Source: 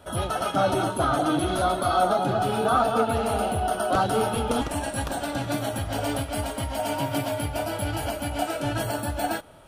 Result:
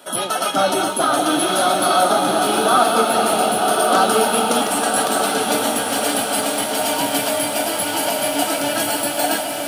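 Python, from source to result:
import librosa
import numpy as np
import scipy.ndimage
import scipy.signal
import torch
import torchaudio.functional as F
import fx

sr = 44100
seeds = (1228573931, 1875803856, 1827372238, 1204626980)

p1 = scipy.signal.sosfilt(scipy.signal.butter(4, 190.0, 'highpass', fs=sr, output='sos'), x)
p2 = fx.high_shelf(p1, sr, hz=2300.0, db=10.0)
p3 = p2 + fx.echo_diffused(p2, sr, ms=1152, feedback_pct=41, wet_db=-4.0, dry=0)
p4 = fx.echo_crushed(p3, sr, ms=458, feedback_pct=80, bits=7, wet_db=-12.5)
y = p4 * 10.0 ** (4.0 / 20.0)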